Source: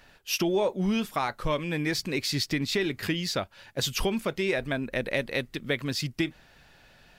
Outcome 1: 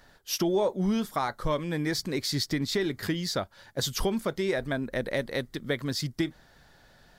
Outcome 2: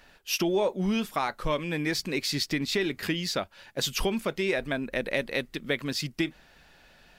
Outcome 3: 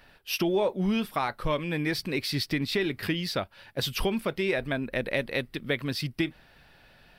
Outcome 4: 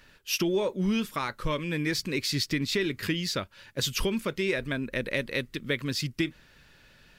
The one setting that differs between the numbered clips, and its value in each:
parametric band, centre frequency: 2,600, 110, 6,800, 740 Hertz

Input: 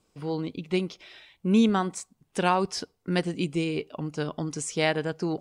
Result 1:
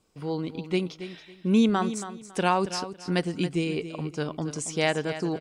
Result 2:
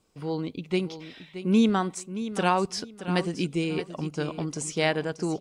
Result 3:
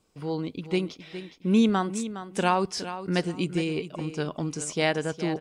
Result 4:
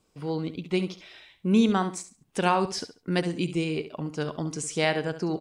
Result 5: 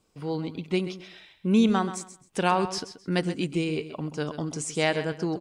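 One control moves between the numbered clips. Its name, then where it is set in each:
repeating echo, delay time: 277, 624, 413, 69, 131 milliseconds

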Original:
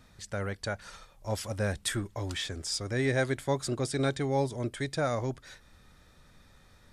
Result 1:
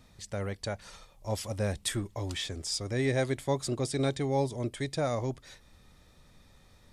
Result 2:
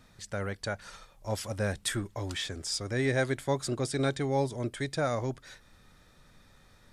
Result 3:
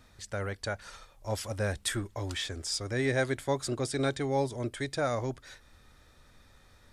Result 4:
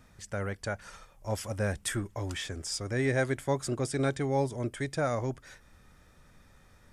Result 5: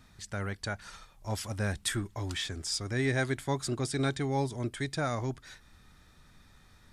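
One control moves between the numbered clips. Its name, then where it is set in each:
parametric band, centre frequency: 1,500, 65, 170, 4,000, 530 Hertz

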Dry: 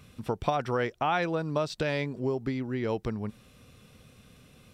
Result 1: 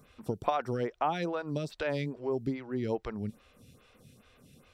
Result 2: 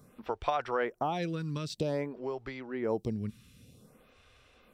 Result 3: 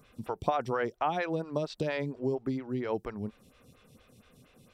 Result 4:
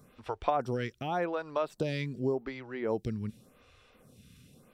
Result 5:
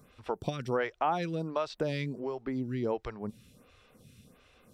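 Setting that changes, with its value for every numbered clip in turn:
phaser with staggered stages, speed: 2.4, 0.52, 4.3, 0.87, 1.4 Hertz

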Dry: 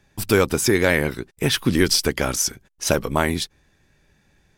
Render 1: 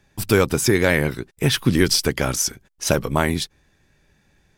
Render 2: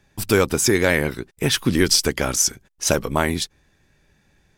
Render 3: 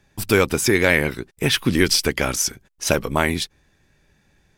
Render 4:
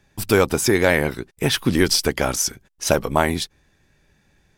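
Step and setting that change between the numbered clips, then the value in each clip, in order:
dynamic equaliser, frequency: 130, 7,000, 2,400, 760 Hertz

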